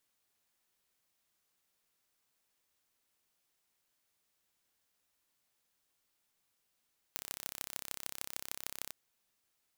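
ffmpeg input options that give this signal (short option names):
-f lavfi -i "aevalsrc='0.335*eq(mod(n,1328),0)*(0.5+0.5*eq(mod(n,6640),0))':d=1.76:s=44100"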